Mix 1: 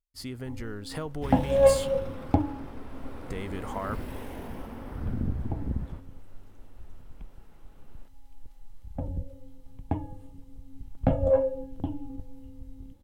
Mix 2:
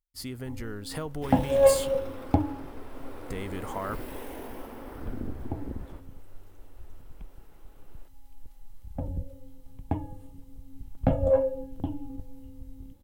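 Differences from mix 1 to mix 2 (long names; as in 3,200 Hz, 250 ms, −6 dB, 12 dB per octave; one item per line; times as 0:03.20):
second sound: add low shelf with overshoot 240 Hz −8 dB, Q 1.5
master: add high-shelf EQ 11,000 Hz +10.5 dB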